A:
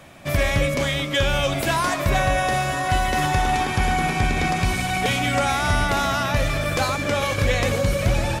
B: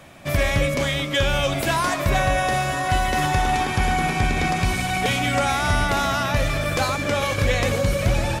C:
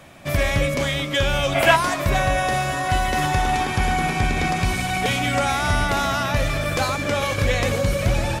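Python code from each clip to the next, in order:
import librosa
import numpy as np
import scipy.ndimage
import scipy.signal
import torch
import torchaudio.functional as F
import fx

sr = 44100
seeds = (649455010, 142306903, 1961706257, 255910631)

y1 = x
y2 = fx.spec_box(y1, sr, start_s=1.55, length_s=0.21, low_hz=500.0, high_hz=3400.0, gain_db=9)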